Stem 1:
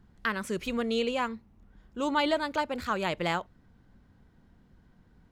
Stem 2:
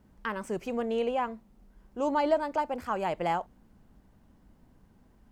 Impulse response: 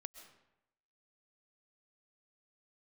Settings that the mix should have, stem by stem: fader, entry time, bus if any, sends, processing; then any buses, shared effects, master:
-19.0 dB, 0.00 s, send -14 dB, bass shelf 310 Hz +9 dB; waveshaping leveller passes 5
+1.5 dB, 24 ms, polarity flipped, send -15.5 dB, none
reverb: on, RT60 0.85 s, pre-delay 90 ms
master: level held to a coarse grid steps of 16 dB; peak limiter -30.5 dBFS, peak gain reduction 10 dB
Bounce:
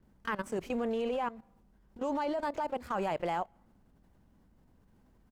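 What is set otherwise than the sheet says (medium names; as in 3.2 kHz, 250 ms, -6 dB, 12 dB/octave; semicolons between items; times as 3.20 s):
stem 1 -19.0 dB -> -29.5 dB; master: missing peak limiter -30.5 dBFS, peak gain reduction 10 dB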